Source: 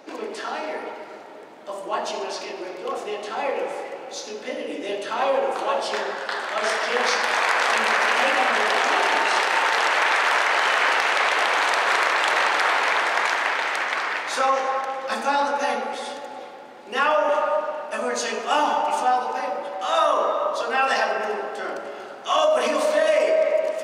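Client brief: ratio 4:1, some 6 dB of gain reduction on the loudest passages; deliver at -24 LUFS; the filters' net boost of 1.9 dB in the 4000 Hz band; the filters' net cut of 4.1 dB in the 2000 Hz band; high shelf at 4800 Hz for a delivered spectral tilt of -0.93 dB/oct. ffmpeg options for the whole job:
-af "equalizer=f=2k:t=o:g=-6,equalizer=f=4k:t=o:g=8,highshelf=f=4.8k:g=-7,acompressor=threshold=-23dB:ratio=4,volume=3dB"

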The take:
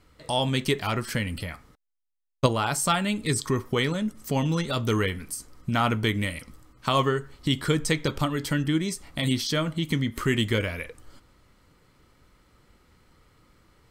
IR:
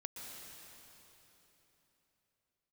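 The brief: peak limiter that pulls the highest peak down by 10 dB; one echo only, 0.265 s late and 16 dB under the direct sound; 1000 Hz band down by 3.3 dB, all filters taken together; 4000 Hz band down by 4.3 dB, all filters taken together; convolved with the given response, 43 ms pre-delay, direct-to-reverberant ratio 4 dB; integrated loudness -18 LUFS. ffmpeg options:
-filter_complex "[0:a]equalizer=f=1k:t=o:g=-4,equalizer=f=4k:t=o:g=-5.5,alimiter=limit=-17dB:level=0:latency=1,aecho=1:1:265:0.158,asplit=2[a][b];[1:a]atrim=start_sample=2205,adelay=43[c];[b][c]afir=irnorm=-1:irlink=0,volume=-2dB[d];[a][d]amix=inputs=2:normalize=0,volume=10dB"

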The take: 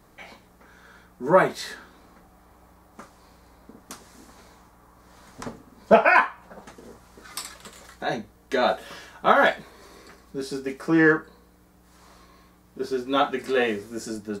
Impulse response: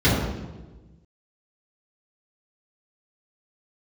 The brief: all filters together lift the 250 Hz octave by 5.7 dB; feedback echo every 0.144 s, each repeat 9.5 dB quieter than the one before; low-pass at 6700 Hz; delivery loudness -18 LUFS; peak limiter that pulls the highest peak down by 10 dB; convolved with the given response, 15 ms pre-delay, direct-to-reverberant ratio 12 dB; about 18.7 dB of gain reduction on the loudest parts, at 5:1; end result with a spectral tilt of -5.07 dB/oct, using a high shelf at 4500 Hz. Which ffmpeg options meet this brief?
-filter_complex "[0:a]lowpass=6.7k,equalizer=f=250:t=o:g=8,highshelf=f=4.5k:g=-8.5,acompressor=threshold=-29dB:ratio=5,alimiter=level_in=0.5dB:limit=-24dB:level=0:latency=1,volume=-0.5dB,aecho=1:1:144|288|432|576:0.335|0.111|0.0365|0.012,asplit=2[a][b];[1:a]atrim=start_sample=2205,adelay=15[c];[b][c]afir=irnorm=-1:irlink=0,volume=-32dB[d];[a][d]amix=inputs=2:normalize=0,volume=18.5dB"

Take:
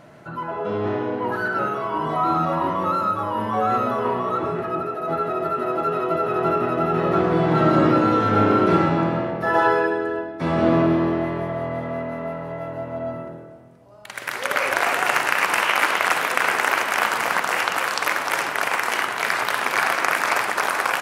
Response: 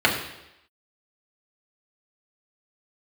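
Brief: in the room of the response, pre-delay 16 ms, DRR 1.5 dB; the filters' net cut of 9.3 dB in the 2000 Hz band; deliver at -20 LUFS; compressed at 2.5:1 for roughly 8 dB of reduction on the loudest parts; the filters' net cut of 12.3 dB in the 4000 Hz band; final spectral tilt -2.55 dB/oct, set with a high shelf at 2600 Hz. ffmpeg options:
-filter_complex "[0:a]equalizer=f=2k:t=o:g=-7.5,highshelf=f=2.6k:g=-9,equalizer=f=4k:t=o:g=-6,acompressor=threshold=-26dB:ratio=2.5,asplit=2[a][b];[1:a]atrim=start_sample=2205,adelay=16[c];[b][c]afir=irnorm=-1:irlink=0,volume=-21dB[d];[a][d]amix=inputs=2:normalize=0,volume=7.5dB"

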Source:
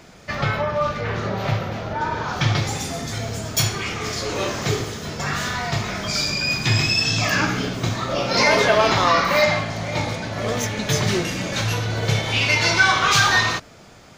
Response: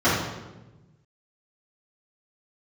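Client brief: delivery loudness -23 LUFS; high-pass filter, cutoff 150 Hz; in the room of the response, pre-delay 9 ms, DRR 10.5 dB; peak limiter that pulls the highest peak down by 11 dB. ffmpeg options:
-filter_complex "[0:a]highpass=150,alimiter=limit=-15dB:level=0:latency=1,asplit=2[a][b];[1:a]atrim=start_sample=2205,adelay=9[c];[b][c]afir=irnorm=-1:irlink=0,volume=-30.5dB[d];[a][d]amix=inputs=2:normalize=0,volume=1dB"

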